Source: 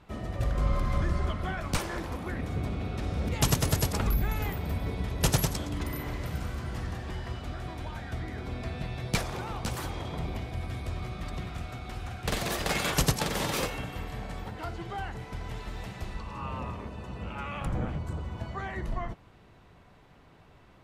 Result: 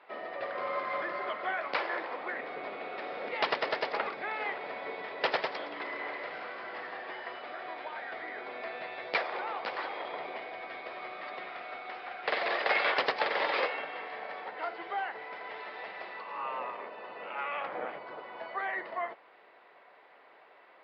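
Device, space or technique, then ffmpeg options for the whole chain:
musical greeting card: -af "aresample=11025,aresample=44100,highpass=f=510:w=0.5412,highpass=f=510:w=1.3066,aemphasis=mode=reproduction:type=riaa,equalizer=f=2000:t=o:w=0.56:g=7,volume=1.33"

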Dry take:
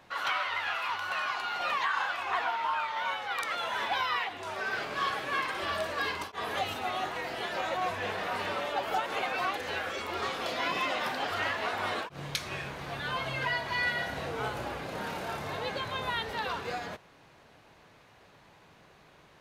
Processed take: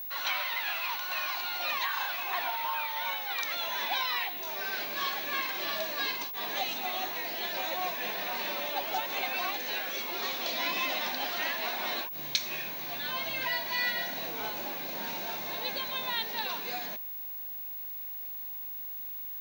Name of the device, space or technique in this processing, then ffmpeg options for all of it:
old television with a line whistle: -af "highpass=f=190:w=0.5412,highpass=f=190:w=1.3066,equalizer=f=460:t=q:w=4:g=-7,equalizer=f=1300:t=q:w=4:g=-8,equalizer=f=2400:t=q:w=4:g=4,equalizer=f=4000:t=q:w=4:g=9,equalizer=f=6000:t=q:w=4:g=9,lowpass=f=7700:w=0.5412,lowpass=f=7700:w=1.3066,aeval=exprs='val(0)+0.0178*sin(2*PI*15625*n/s)':c=same,volume=0.841"

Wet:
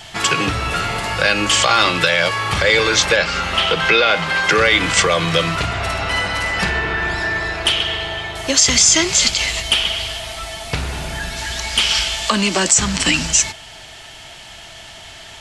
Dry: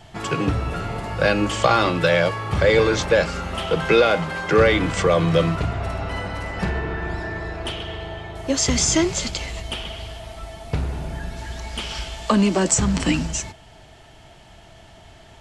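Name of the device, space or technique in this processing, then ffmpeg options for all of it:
mastering chain: -filter_complex "[0:a]asettb=1/sr,asplit=3[s0][s1][s2];[s0]atrim=end=3.164[s3];[s1]atrim=start=3.16:end=4.44,asetpts=PTS-STARTPTS,afade=t=in:d=0.004:c=qsin,afade=t=out:st=1.276:d=0.004:c=qsin,acrossover=split=5400[s4][s5];[s5]acompressor=threshold=0.00141:ratio=4:attack=1:release=60[s6];[s4][s6]amix=inputs=2:normalize=0[s7];[s2]atrim=start=4.436[s8];[s3][s7]acrossfade=d=0.004:c1=hsin:c2=qsin[s9];[s9][s8]acrossfade=d=0.004:c1=qsin:c2=hsin,equalizer=f=3300:t=o:w=2.8:g=2.5,acompressor=threshold=0.0891:ratio=2,tiltshelf=f=1100:g=-7,alimiter=level_in=2.82:limit=0.891:release=50:level=0:latency=1,volume=0.891"

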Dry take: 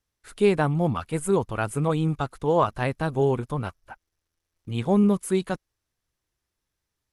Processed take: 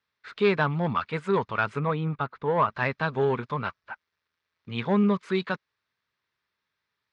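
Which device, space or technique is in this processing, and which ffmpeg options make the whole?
overdrive pedal into a guitar cabinet: -filter_complex "[0:a]asplit=2[s0][s1];[s1]highpass=f=720:p=1,volume=4.47,asoftclip=type=tanh:threshold=0.376[s2];[s0][s2]amix=inputs=2:normalize=0,lowpass=f=5200:p=1,volume=0.501,highpass=110,equalizer=f=320:t=q:w=4:g=-10,equalizer=f=520:t=q:w=4:g=-5,equalizer=f=740:t=q:w=4:g=-9,equalizer=f=3000:t=q:w=4:g=-5,lowpass=f=4200:w=0.5412,lowpass=f=4200:w=1.3066,asettb=1/sr,asplit=3[s3][s4][s5];[s3]atrim=end=1.794[s6];[s4]atrim=start=1.79:end=2.71,asetpts=PTS-STARTPTS,afade=t=in:d=0.004:c=qsin,afade=t=out:st=0.916:d=0.004:c=qsin,lowpass=f=1400:p=1[s7];[s5]atrim=start=2.706[s8];[s6][s7]acrossfade=d=0.004:c1=hsin:c2=qsin[s9];[s9][s8]acrossfade=d=0.004:c1=qsin:c2=hsin"

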